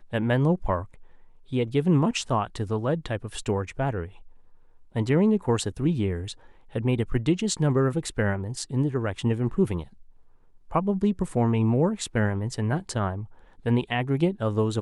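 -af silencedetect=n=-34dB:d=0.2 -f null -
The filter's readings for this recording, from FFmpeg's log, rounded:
silence_start: 0.85
silence_end: 1.52 | silence_duration: 0.68
silence_start: 4.06
silence_end: 4.96 | silence_duration: 0.89
silence_start: 6.32
silence_end: 6.75 | silence_duration: 0.43
silence_start: 9.83
silence_end: 10.71 | silence_duration: 0.88
silence_start: 13.24
silence_end: 13.66 | silence_duration: 0.41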